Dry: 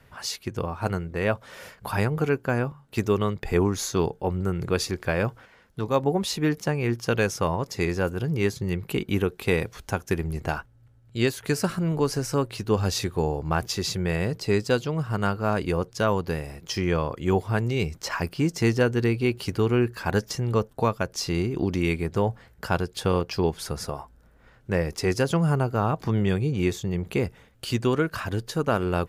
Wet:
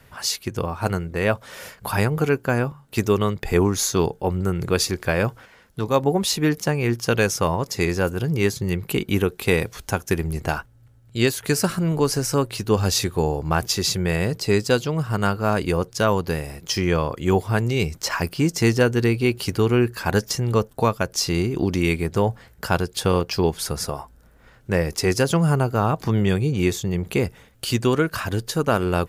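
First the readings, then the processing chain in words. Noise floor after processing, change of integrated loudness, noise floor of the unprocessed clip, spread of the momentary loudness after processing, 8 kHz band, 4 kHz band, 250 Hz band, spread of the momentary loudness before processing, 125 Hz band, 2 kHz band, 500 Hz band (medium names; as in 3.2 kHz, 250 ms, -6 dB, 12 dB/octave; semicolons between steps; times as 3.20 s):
-52 dBFS, +4.0 dB, -56 dBFS, 6 LU, +8.0 dB, +6.5 dB, +3.5 dB, 7 LU, +3.5 dB, +4.5 dB, +3.5 dB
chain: treble shelf 5.2 kHz +7 dB; trim +3.5 dB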